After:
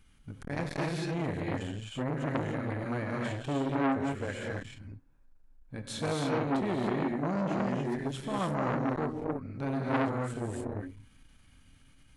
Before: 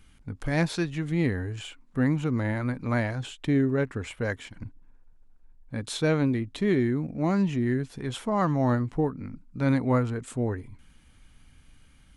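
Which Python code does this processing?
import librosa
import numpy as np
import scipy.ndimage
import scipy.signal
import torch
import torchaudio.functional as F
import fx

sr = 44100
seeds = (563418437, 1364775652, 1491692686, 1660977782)

y = fx.rev_gated(x, sr, seeds[0], gate_ms=320, shape='rising', drr_db=-1.5)
y = fx.transformer_sat(y, sr, knee_hz=1200.0)
y = y * librosa.db_to_amplitude(-5.5)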